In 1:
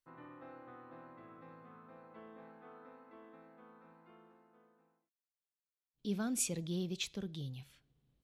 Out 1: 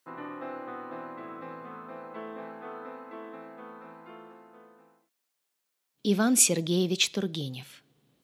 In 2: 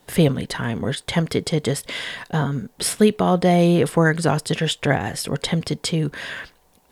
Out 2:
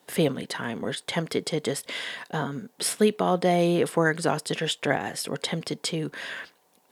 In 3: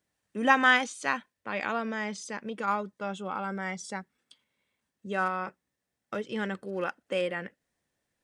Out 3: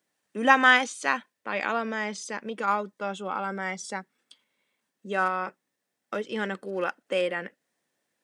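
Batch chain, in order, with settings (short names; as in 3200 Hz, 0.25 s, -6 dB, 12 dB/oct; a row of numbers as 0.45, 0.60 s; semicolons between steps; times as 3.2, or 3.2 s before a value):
HPF 220 Hz 12 dB/oct; match loudness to -27 LUFS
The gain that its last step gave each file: +15.0, -4.0, +3.5 dB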